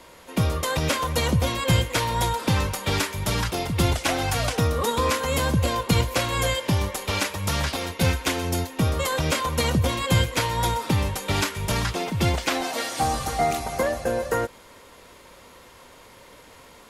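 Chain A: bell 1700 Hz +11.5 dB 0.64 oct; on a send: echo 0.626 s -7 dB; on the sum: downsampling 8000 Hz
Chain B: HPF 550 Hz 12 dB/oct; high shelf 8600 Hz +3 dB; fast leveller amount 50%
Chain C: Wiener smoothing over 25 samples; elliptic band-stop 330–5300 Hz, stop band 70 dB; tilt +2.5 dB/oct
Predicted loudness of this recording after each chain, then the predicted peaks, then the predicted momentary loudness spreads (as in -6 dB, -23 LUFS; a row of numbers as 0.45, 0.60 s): -22.0, -24.0, -31.0 LUFS; -5.5, -8.0, -11.0 dBFS; 3, 11, 8 LU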